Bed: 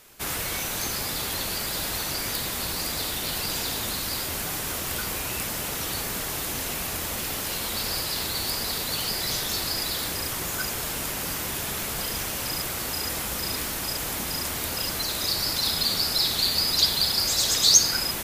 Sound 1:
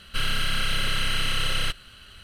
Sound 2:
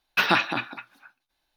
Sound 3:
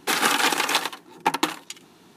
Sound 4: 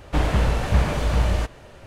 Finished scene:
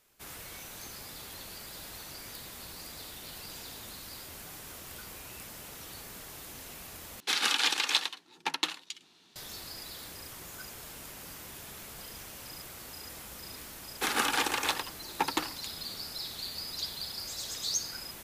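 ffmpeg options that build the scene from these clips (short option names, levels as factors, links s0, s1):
-filter_complex "[3:a]asplit=2[s0][s1];[0:a]volume=0.168[s2];[s0]equalizer=f=4000:w=0.56:g=15[s3];[s2]asplit=2[s4][s5];[s4]atrim=end=7.204[s6];[s3]atrim=end=2.16,asetpts=PTS-STARTPTS,volume=0.158[s7];[s5]atrim=start=9.356[s8];[s1]atrim=end=2.16,asetpts=PTS-STARTPTS,volume=0.398,afade=t=in:d=0.004:c=hsin,afade=t=out:st=2.156:d=0.004:c=hsin,adelay=13940[s9];[s6][s7]acrossfade=d=0.004:c1=hsin:c2=hsin[s10];[s10][s8]acrossfade=d=0.004:c1=hsin:c2=hsin[s11];[s11][s9]amix=inputs=2:normalize=0"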